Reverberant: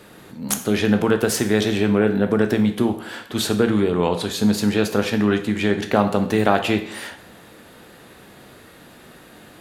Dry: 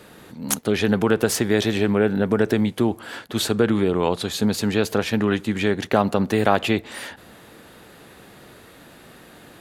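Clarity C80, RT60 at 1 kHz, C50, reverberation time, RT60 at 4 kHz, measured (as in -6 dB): 14.0 dB, 0.60 s, 11.0 dB, 0.60 s, 0.55 s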